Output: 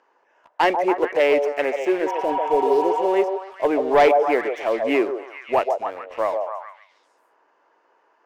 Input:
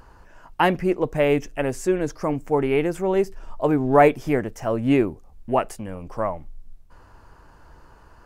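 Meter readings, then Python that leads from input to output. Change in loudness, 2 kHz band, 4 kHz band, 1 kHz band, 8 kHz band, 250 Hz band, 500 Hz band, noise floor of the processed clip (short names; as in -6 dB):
+1.5 dB, +2.5 dB, +3.0 dB, +4.0 dB, n/a, -3.5 dB, +2.5 dB, -64 dBFS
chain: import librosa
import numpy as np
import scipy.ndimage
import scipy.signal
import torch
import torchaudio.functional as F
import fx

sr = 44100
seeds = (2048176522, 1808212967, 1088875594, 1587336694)

y = fx.cabinet(x, sr, low_hz=350.0, low_slope=24, high_hz=5800.0, hz=(1400.0, 2100.0, 4500.0), db=(-4, 5, -9))
y = fx.leveller(y, sr, passes=2)
y = fx.spec_repair(y, sr, seeds[0], start_s=2.09, length_s=0.96, low_hz=720.0, high_hz=3500.0, source='after')
y = fx.echo_stepped(y, sr, ms=141, hz=610.0, octaves=0.7, feedback_pct=70, wet_db=-2)
y = y * librosa.db_to_amplitude(-4.5)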